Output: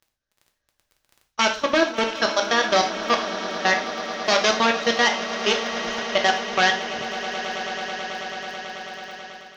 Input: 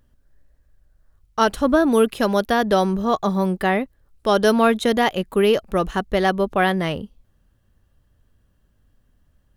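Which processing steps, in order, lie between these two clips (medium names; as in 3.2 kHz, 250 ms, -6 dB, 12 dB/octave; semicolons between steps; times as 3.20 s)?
one-sided wavefolder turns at -14 dBFS; elliptic low-pass 6.2 kHz, stop band 50 dB; tilt EQ +3.5 dB/octave; hum notches 50/100/150/200/250/300/350/400/450 Hz; level held to a coarse grid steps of 21 dB; echo with a slow build-up 109 ms, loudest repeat 8, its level -17.5 dB; crackle 17 per s -40 dBFS; level rider gain up to 7 dB; gated-style reverb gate 150 ms falling, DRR 2.5 dB; trim -3.5 dB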